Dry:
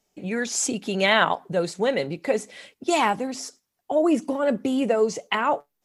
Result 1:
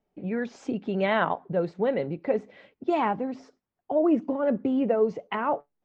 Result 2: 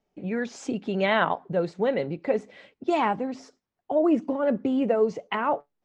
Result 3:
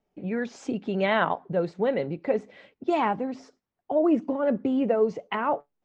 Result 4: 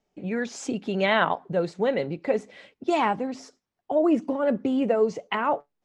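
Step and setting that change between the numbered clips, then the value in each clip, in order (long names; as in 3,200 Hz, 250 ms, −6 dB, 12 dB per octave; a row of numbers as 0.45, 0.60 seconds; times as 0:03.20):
head-to-tape spacing loss, at 10 kHz: 45, 29, 37, 21 decibels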